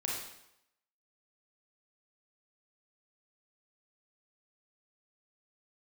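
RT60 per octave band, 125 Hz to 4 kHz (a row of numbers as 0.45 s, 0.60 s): 0.70 s, 0.75 s, 0.80 s, 0.80 s, 0.75 s, 0.75 s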